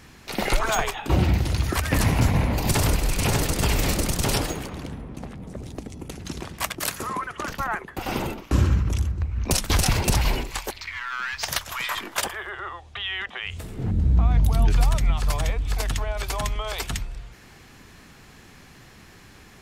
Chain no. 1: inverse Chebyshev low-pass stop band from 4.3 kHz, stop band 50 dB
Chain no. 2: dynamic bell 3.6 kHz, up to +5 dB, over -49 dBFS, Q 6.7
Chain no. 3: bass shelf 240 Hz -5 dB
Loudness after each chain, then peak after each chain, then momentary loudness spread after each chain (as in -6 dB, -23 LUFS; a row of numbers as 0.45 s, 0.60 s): -26.0 LUFS, -25.0 LUFS, -27.0 LUFS; -7.5 dBFS, -6.5 dBFS, -8.5 dBFS; 16 LU, 14 LU, 13 LU